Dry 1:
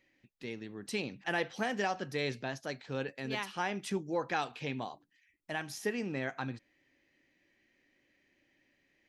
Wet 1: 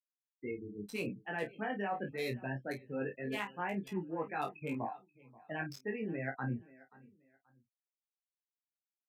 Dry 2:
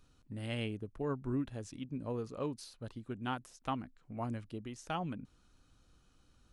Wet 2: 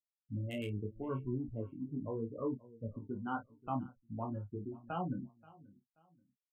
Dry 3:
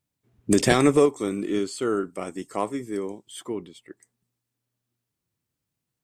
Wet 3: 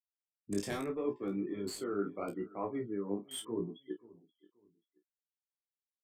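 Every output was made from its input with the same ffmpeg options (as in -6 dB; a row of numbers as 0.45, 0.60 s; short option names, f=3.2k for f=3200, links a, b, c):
-filter_complex "[0:a]afftfilt=real='re*gte(hypot(re,im),0.02)':imag='im*gte(hypot(re,im),0.02)':win_size=1024:overlap=0.75,areverse,acompressor=threshold=-36dB:ratio=12,areverse,aecho=1:1:531|1062:0.0841|0.0236,acrossover=split=150|3200[a][b][c];[c]acrusher=bits=7:mix=0:aa=0.000001[d];[a][b][d]amix=inputs=3:normalize=0,aresample=32000,aresample=44100,asplit=2[e][f];[f]adelay=30,volume=-8.5dB[g];[e][g]amix=inputs=2:normalize=0,flanger=delay=16:depth=4.2:speed=0.78,volume=5.5dB"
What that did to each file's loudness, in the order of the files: -3.0, -0.5, -13.5 LU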